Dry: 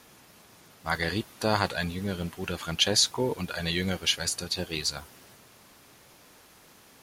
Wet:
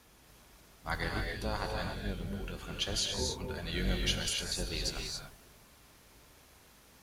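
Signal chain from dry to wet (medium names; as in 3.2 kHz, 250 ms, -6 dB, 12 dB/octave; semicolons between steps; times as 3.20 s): octave divider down 2 oct, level +3 dB; 1.08–3.73 s: flange 1.1 Hz, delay 8.5 ms, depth 6.8 ms, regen +57%; gated-style reverb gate 310 ms rising, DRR 1.5 dB; trim -7.5 dB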